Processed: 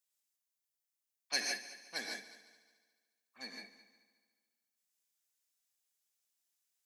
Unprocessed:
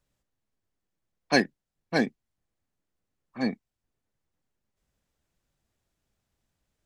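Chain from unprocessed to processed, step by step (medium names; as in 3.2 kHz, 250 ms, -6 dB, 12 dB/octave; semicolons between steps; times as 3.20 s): differentiator; on a send: multi-head delay 72 ms, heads second and third, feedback 45%, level -16.5 dB; on the sum: gated-style reverb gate 180 ms rising, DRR 1 dB; trim -1 dB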